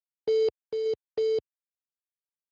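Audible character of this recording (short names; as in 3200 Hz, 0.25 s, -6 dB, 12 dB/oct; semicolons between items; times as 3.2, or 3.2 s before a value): a quantiser's noise floor 6-bit, dither none; random-step tremolo; Speex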